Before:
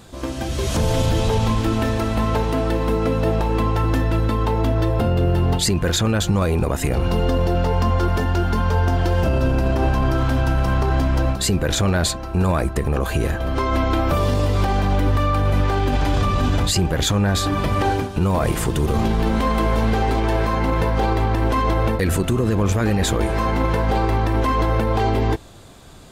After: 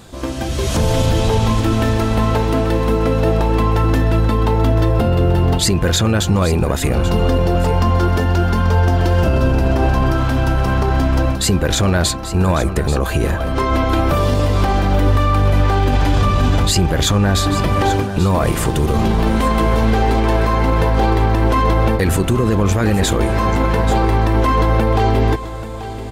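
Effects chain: echo 0.835 s -12 dB; gain +3.5 dB

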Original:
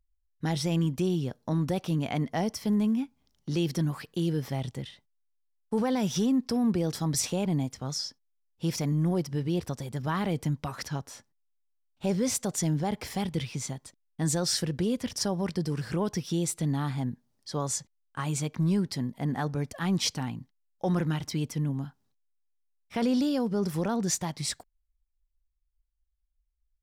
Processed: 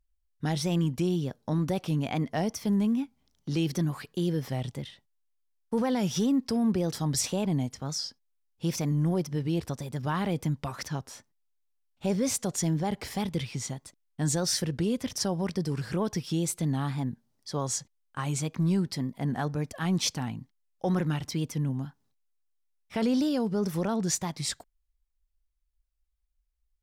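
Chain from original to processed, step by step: wow and flutter 75 cents

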